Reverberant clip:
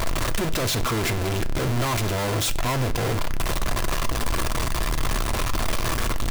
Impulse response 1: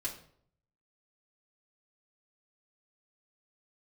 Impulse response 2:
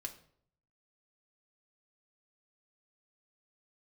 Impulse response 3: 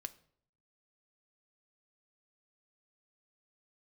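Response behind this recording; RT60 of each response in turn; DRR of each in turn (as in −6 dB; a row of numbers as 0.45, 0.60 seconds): 3; 0.60, 0.60, 0.60 seconds; −6.0, 2.0, 9.0 decibels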